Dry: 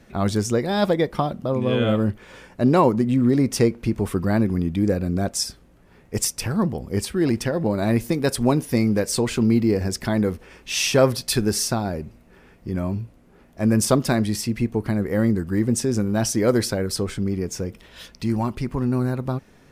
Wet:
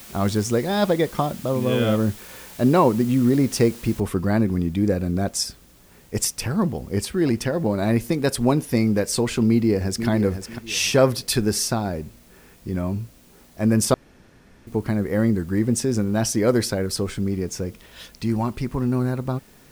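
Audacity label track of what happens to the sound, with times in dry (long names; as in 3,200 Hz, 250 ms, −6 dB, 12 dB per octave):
4.000000	4.000000	noise floor change −43 dB −56 dB
9.480000	10.080000	delay throw 500 ms, feedback 25%, level −8.5 dB
13.940000	14.670000	fill with room tone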